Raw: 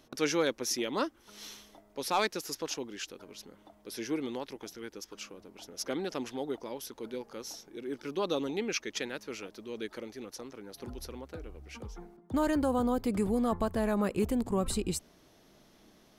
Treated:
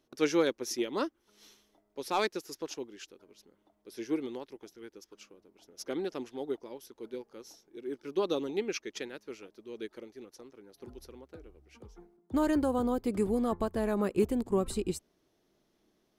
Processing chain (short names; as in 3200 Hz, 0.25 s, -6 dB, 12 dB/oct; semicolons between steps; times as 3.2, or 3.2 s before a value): bell 370 Hz +6 dB 0.64 oct; upward expander 1.5:1, over -50 dBFS